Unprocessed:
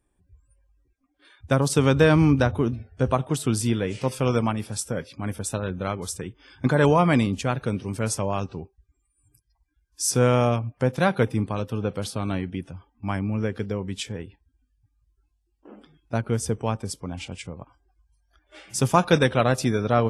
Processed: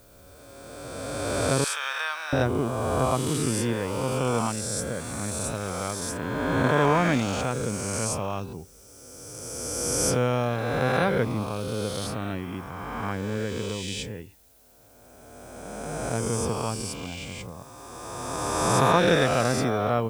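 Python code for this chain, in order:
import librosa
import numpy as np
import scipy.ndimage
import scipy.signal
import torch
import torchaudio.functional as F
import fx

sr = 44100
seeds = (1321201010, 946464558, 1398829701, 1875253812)

y = fx.spec_swells(x, sr, rise_s=2.54)
y = fx.dmg_noise_colour(y, sr, seeds[0], colour='blue', level_db=-53.0)
y = fx.highpass(y, sr, hz=1000.0, slope=24, at=(1.64, 2.33))
y = y * librosa.db_to_amplitude(-6.0)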